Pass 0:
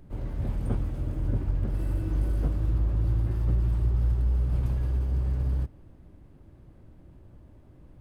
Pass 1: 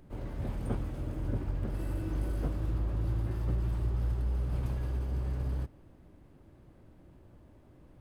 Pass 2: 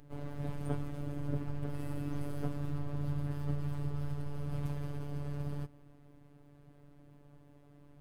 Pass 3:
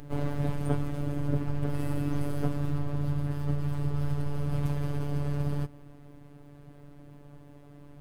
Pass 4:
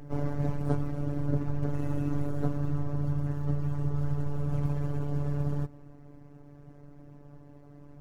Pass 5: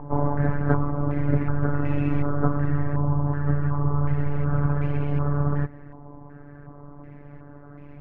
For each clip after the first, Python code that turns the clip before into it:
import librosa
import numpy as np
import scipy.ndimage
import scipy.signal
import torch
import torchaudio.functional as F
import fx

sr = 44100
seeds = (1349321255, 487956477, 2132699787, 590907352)

y1 = fx.low_shelf(x, sr, hz=180.0, db=-7.5)
y2 = fx.robotise(y1, sr, hz=144.0)
y2 = y2 * librosa.db_to_amplitude(1.0)
y3 = fx.rider(y2, sr, range_db=10, speed_s=0.5)
y3 = y3 * librosa.db_to_amplitude(7.5)
y4 = scipy.signal.medfilt(y3, 15)
y5 = fx.filter_held_lowpass(y4, sr, hz=2.7, low_hz=980.0, high_hz=2400.0)
y5 = y5 * librosa.db_to_amplitude(6.5)